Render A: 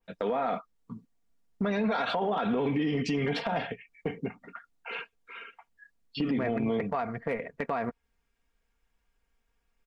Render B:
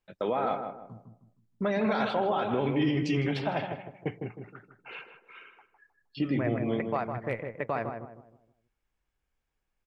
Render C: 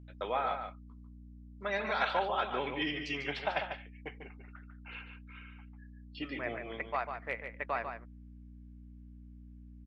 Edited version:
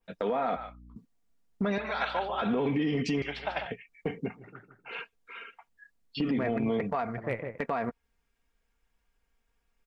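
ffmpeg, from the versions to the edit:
-filter_complex "[2:a]asplit=3[a][b][c];[1:a]asplit=2[d][e];[0:a]asplit=6[f][g][h][i][j][k];[f]atrim=end=0.562[l];[a]atrim=start=0.558:end=0.962[m];[g]atrim=start=0.958:end=1.782[n];[b]atrim=start=1.778:end=2.422[o];[h]atrim=start=2.418:end=3.222[p];[c]atrim=start=3.218:end=3.662[q];[i]atrim=start=3.658:end=4.51[r];[d]atrim=start=4.35:end=5.02[s];[j]atrim=start=4.86:end=7.182[t];[e]atrim=start=7.178:end=7.582[u];[k]atrim=start=7.578[v];[l][m]acrossfade=d=0.004:c1=hsin:c2=hsin[w];[w][n]acrossfade=d=0.004:c1=hsin:c2=hsin[x];[x][o]acrossfade=d=0.004:c1=hsin:c2=hsin[y];[y][p]acrossfade=d=0.004:c1=hsin:c2=hsin[z];[z][q]acrossfade=d=0.004:c1=hsin:c2=hsin[aa];[aa][r]acrossfade=d=0.004:c1=hsin:c2=hsin[ab];[ab][s]acrossfade=d=0.16:c1=tri:c2=tri[ac];[ac][t]acrossfade=d=0.16:c1=tri:c2=tri[ad];[ad][u]acrossfade=d=0.004:c1=hsin:c2=hsin[ae];[ae][v]acrossfade=d=0.004:c1=hsin:c2=hsin"

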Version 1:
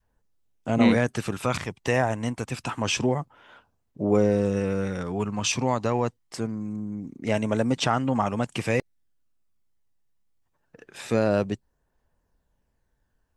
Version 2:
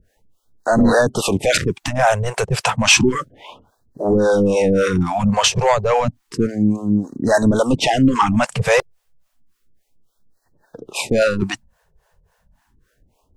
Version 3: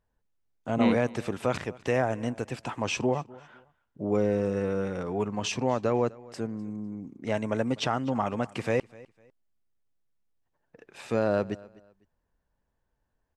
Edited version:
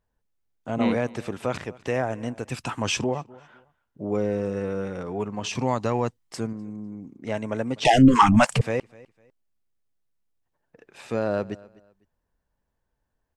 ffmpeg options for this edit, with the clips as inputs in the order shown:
-filter_complex "[0:a]asplit=2[a][b];[2:a]asplit=4[c][d][e][f];[c]atrim=end=2.492[g];[a]atrim=start=2.488:end=3.042[h];[d]atrim=start=3.038:end=5.552[i];[b]atrim=start=5.548:end=6.532[j];[e]atrim=start=6.528:end=7.852[k];[1:a]atrim=start=7.848:end=8.612[l];[f]atrim=start=8.608[m];[g][h]acrossfade=d=0.004:c1=hsin:c2=hsin[n];[n][i]acrossfade=d=0.004:c1=hsin:c2=hsin[o];[o][j]acrossfade=d=0.004:c1=hsin:c2=hsin[p];[p][k]acrossfade=d=0.004:c1=hsin:c2=hsin[q];[q][l]acrossfade=d=0.004:c1=hsin:c2=hsin[r];[r][m]acrossfade=d=0.004:c1=hsin:c2=hsin"

